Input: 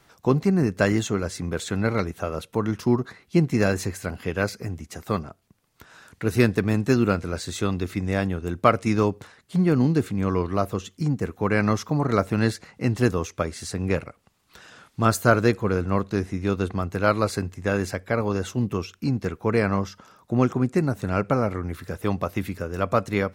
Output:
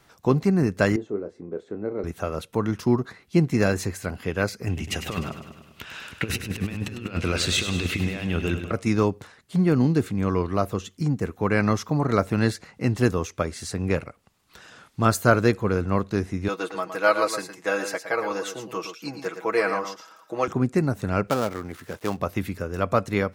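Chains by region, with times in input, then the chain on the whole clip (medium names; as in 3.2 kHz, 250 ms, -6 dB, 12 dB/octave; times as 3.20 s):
0.96–2.04 s: band-pass filter 390 Hz, Q 2.3 + doubling 29 ms -10.5 dB
4.67–8.71 s: peaking EQ 2.8 kHz +15 dB 0.79 oct + compressor with a negative ratio -27 dBFS, ratio -0.5 + feedback delay 101 ms, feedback 60%, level -9.5 dB
16.48–20.48 s: high-pass 470 Hz + comb 6.2 ms, depth 81% + delay 114 ms -9 dB
21.27–22.20 s: dead-time distortion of 0.12 ms + high-pass 250 Hz 6 dB/octave
whole clip: none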